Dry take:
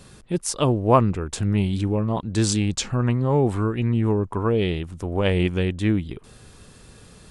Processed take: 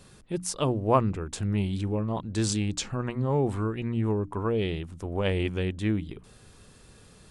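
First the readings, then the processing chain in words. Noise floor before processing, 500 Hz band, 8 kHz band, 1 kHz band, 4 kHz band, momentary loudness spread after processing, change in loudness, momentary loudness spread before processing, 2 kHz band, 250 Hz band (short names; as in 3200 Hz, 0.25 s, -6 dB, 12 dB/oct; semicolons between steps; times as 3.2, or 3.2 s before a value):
-48 dBFS, -5.5 dB, -5.5 dB, -5.5 dB, -5.5 dB, 8 LU, -6.0 dB, 8 LU, -5.5 dB, -6.0 dB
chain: notches 60/120/180/240/300 Hz; gain -5.5 dB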